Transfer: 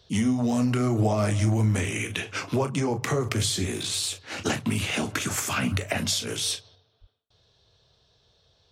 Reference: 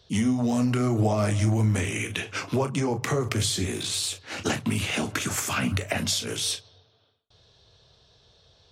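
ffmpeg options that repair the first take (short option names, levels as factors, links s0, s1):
-filter_complex "[0:a]asplit=3[s0][s1][s2];[s0]afade=t=out:st=7:d=0.02[s3];[s1]highpass=f=140:w=0.5412,highpass=f=140:w=1.3066,afade=t=in:st=7:d=0.02,afade=t=out:st=7.12:d=0.02[s4];[s2]afade=t=in:st=7.12:d=0.02[s5];[s3][s4][s5]amix=inputs=3:normalize=0,asetnsamples=n=441:p=0,asendcmd='6.75 volume volume 5dB',volume=1"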